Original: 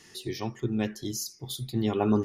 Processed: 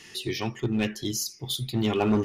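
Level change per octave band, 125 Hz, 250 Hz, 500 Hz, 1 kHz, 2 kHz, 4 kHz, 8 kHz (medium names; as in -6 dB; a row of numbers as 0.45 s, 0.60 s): +2.0 dB, +1.5 dB, +1.5 dB, +2.0 dB, +7.5 dB, +7.0 dB, +4.0 dB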